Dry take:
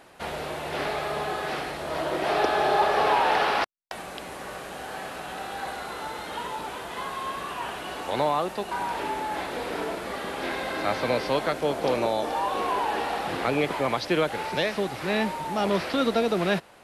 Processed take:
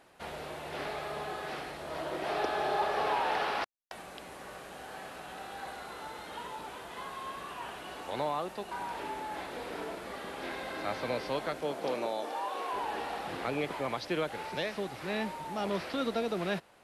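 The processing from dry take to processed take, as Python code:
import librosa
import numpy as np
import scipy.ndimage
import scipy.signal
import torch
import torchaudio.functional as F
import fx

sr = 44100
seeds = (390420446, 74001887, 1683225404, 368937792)

y = fx.highpass(x, sr, hz=fx.line((11.61, 120.0), (12.72, 440.0)), slope=12, at=(11.61, 12.72), fade=0.02)
y = F.gain(torch.from_numpy(y), -8.5).numpy()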